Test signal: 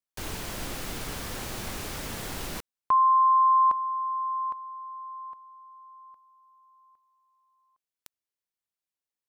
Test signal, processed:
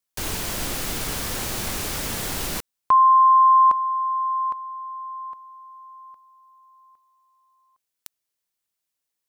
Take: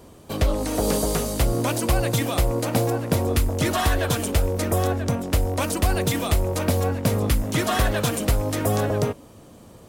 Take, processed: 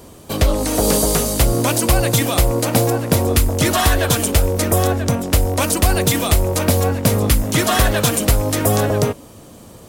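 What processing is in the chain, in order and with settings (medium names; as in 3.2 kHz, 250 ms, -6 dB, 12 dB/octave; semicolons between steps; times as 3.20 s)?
treble shelf 4.1 kHz +5.5 dB; trim +5.5 dB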